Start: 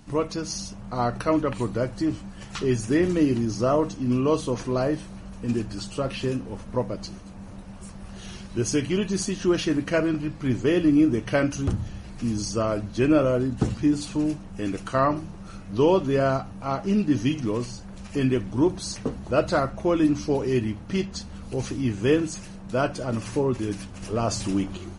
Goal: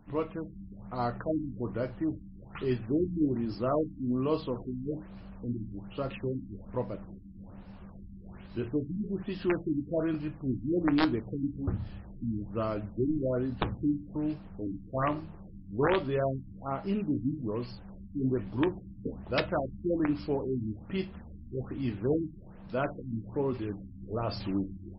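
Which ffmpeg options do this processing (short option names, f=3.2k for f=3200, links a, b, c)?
-af "aeval=exprs='(mod(3.76*val(0)+1,2)-1)/3.76':c=same,flanger=delay=9.9:depth=3.6:regen=-70:speed=0.16:shape=triangular,afftfilt=real='re*lt(b*sr/1024,310*pow(5500/310,0.5+0.5*sin(2*PI*1.2*pts/sr)))':imag='im*lt(b*sr/1024,310*pow(5500/310,0.5+0.5*sin(2*PI*1.2*pts/sr)))':win_size=1024:overlap=0.75,volume=-2.5dB"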